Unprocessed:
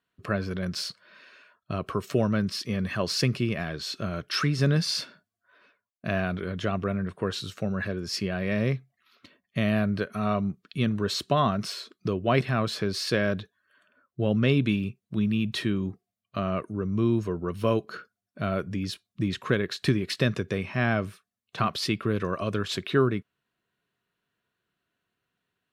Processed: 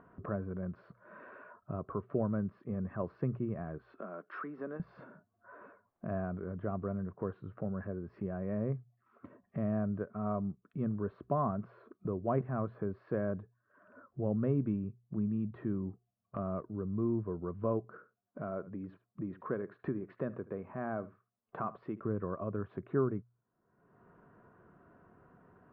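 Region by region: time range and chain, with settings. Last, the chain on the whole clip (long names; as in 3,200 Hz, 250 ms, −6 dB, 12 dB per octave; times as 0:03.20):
0:03.78–0:04.80: Butterworth high-pass 200 Hz + low-shelf EQ 490 Hz −10.5 dB
0:17.94–0:22.00: parametric band 67 Hz −12.5 dB 2.6 octaves + single-tap delay 75 ms −18.5 dB
whole clip: low-pass filter 1,200 Hz 24 dB per octave; mains-hum notches 60/120 Hz; upward compression, threshold −28 dBFS; level −8 dB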